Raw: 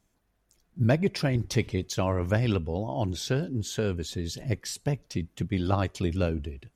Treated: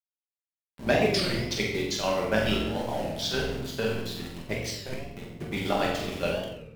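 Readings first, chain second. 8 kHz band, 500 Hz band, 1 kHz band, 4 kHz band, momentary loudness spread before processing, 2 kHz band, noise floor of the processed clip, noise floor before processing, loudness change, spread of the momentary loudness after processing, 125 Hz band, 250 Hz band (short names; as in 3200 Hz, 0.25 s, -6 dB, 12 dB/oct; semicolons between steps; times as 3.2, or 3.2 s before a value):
0.0 dB, +2.5 dB, +3.0 dB, +6.5 dB, 7 LU, +5.5 dB, under -85 dBFS, -72 dBFS, 0.0 dB, 11 LU, -8.0 dB, -2.0 dB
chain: octaver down 1 oct, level -4 dB; HPF 490 Hz 6 dB/oct; low-pass opened by the level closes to 620 Hz, open at -28 dBFS; bell 4200 Hz +4 dB 1.8 oct; chopper 6.9 Hz, depth 65%, duty 55%; sample gate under -41 dBFS; vibrato 0.58 Hz 28 cents; flutter echo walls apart 7.9 m, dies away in 0.57 s; shoebox room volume 290 m³, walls mixed, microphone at 1.2 m; record warp 33 1/3 rpm, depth 160 cents; gain +1 dB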